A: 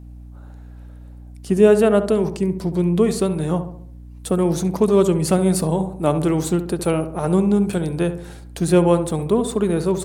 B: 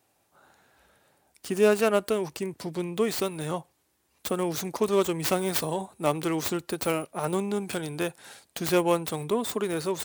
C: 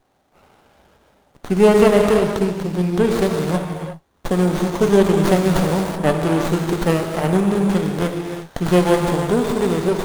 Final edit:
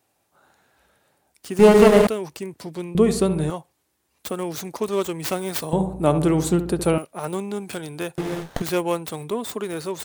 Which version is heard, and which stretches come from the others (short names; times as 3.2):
B
1.59–2.07 from C
2.95–3.5 from A
5.73–6.98 from A
8.18–8.62 from C